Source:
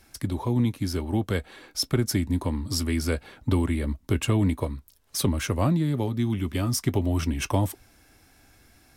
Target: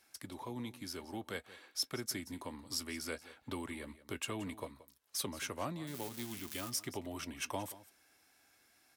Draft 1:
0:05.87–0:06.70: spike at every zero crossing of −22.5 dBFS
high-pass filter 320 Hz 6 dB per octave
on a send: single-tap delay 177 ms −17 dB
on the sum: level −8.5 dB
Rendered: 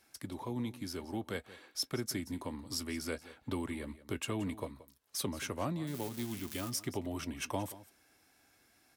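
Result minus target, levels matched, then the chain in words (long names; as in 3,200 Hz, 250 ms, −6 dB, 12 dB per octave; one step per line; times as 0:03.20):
250 Hz band +3.0 dB
0:05.87–0:06.70: spike at every zero crossing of −22.5 dBFS
high-pass filter 730 Hz 6 dB per octave
on a send: single-tap delay 177 ms −17 dB
on the sum: level −8.5 dB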